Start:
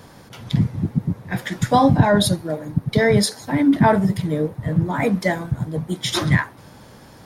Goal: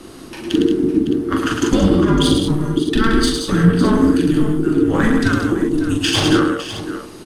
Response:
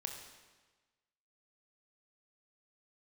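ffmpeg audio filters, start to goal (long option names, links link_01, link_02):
-filter_complex "[0:a]aemphasis=mode=production:type=75fm,acrossover=split=7800[link_01][link_02];[link_02]acompressor=threshold=-33dB:ratio=4:attack=1:release=60[link_03];[link_01][link_03]amix=inputs=2:normalize=0,lowpass=frequency=11000:width=0.5412,lowpass=frequency=11000:width=1.3066,bass=frequency=250:gain=3,treble=frequency=4000:gain=-9,acompressor=threshold=-17dB:ratio=6,aeval=exprs='0.355*(cos(1*acos(clip(val(0)/0.355,-1,1)))-cos(1*PI/2))+0.0398*(cos(4*acos(clip(val(0)/0.355,-1,1)))-cos(4*PI/2))':channel_layout=same,afreqshift=-460,asplit=2[link_04][link_05];[link_05]aecho=0:1:41|107|175|201|557|614:0.668|0.596|0.398|0.299|0.251|0.211[link_06];[link_04][link_06]amix=inputs=2:normalize=0,volume=4dB"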